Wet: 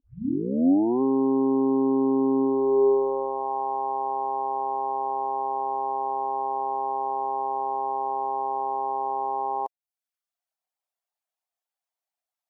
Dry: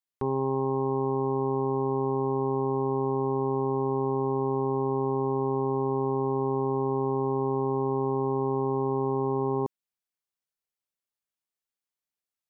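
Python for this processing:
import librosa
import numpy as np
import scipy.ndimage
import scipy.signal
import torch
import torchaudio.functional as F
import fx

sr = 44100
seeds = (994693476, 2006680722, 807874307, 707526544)

y = fx.tape_start_head(x, sr, length_s=1.02)
y = fx.dereverb_blind(y, sr, rt60_s=0.6)
y = fx.filter_sweep_highpass(y, sr, from_hz=270.0, to_hz=710.0, start_s=2.41, end_s=3.51, q=4.9)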